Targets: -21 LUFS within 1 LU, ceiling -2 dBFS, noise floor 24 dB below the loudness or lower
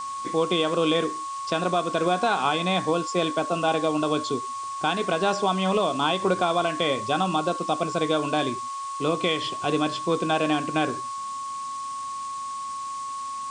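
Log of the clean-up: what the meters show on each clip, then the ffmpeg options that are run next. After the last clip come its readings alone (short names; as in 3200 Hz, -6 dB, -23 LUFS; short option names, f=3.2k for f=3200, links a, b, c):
steady tone 1100 Hz; tone level -30 dBFS; noise floor -33 dBFS; noise floor target -50 dBFS; loudness -25.5 LUFS; peak -10.5 dBFS; loudness target -21.0 LUFS
-> -af "bandreject=f=1.1k:w=30"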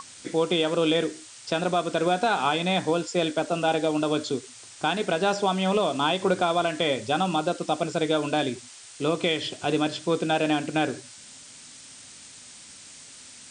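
steady tone none; noise floor -47 dBFS; noise floor target -50 dBFS
-> -af "afftdn=nr=6:nf=-47"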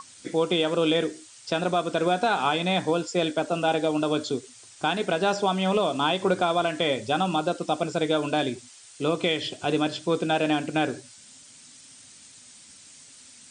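noise floor -50 dBFS; loudness -25.5 LUFS; peak -11.5 dBFS; loudness target -21.0 LUFS
-> -af "volume=4.5dB"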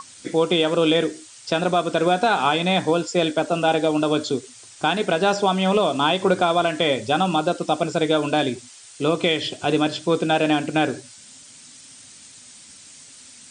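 loudness -21.0 LUFS; peak -7.0 dBFS; noise floor -46 dBFS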